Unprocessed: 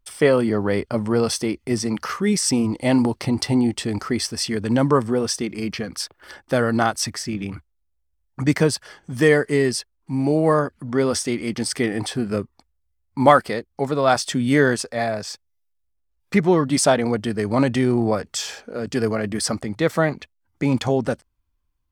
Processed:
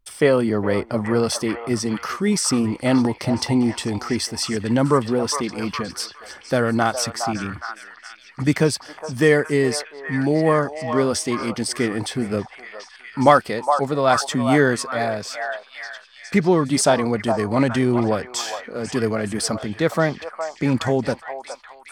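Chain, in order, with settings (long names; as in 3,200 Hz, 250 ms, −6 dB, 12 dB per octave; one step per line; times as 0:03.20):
echo through a band-pass that steps 413 ms, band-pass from 870 Hz, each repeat 0.7 octaves, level −3.5 dB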